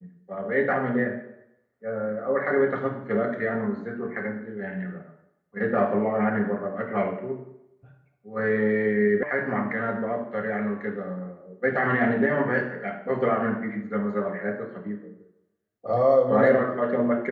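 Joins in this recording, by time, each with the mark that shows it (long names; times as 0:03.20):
0:09.23: cut off before it has died away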